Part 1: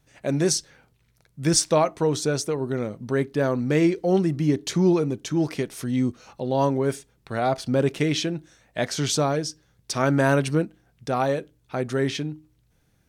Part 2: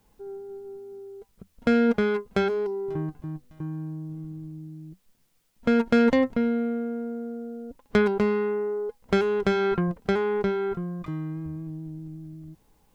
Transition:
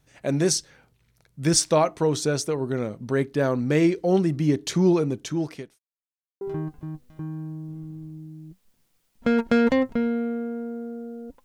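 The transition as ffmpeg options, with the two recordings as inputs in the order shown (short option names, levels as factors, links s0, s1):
-filter_complex "[0:a]apad=whole_dur=11.44,atrim=end=11.44,asplit=2[s0][s1];[s0]atrim=end=5.79,asetpts=PTS-STARTPTS,afade=t=out:st=5.19:d=0.6[s2];[s1]atrim=start=5.79:end=6.41,asetpts=PTS-STARTPTS,volume=0[s3];[1:a]atrim=start=2.82:end=7.85,asetpts=PTS-STARTPTS,afade=t=in:d=0.004:c=hsin[s4];[s2][s3][s4]concat=n=3:v=0:a=1"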